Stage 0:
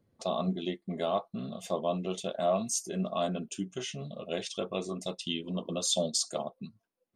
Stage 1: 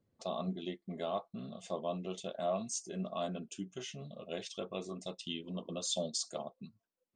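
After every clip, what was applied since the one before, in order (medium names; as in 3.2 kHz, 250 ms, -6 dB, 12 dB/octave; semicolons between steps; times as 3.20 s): steep low-pass 8.4 kHz 36 dB/octave; trim -6.5 dB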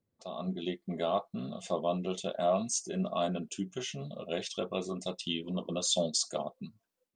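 level rider gain up to 11.5 dB; trim -5.5 dB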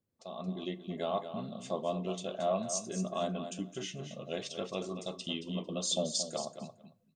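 feedback delay 225 ms, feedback 15%, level -10 dB; on a send at -19 dB: reverberation RT60 0.70 s, pre-delay 16 ms; on the sum: trim -3 dB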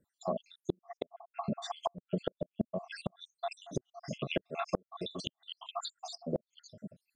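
random holes in the spectrogram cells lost 75%; low-pass that closes with the level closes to 420 Hz, closed at -37 dBFS; inverted gate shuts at -31 dBFS, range -37 dB; trim +12.5 dB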